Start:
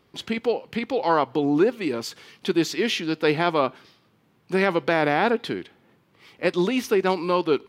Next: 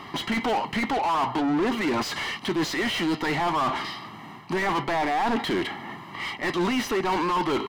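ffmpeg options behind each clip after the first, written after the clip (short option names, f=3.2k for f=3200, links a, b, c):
-filter_complex "[0:a]aecho=1:1:1:0.83,areverse,acompressor=threshold=-29dB:ratio=6,areverse,asplit=2[a][b];[b]highpass=f=720:p=1,volume=30dB,asoftclip=type=tanh:threshold=-20.5dB[c];[a][c]amix=inputs=2:normalize=0,lowpass=f=1.6k:p=1,volume=-6dB,volume=3.5dB"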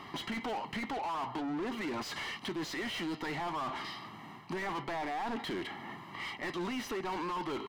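-af "acompressor=threshold=-31dB:ratio=2,volume=-7dB"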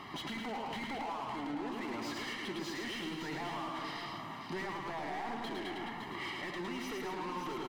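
-filter_complex "[0:a]asplit=2[a][b];[b]aecho=0:1:107.9|215.7:0.708|0.447[c];[a][c]amix=inputs=2:normalize=0,alimiter=level_in=8.5dB:limit=-24dB:level=0:latency=1:release=216,volume=-8.5dB,asplit=2[d][e];[e]aecho=0:1:563:0.422[f];[d][f]amix=inputs=2:normalize=0"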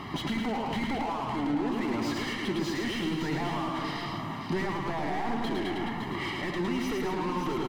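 -af "lowshelf=f=300:g=10,volume=5.5dB"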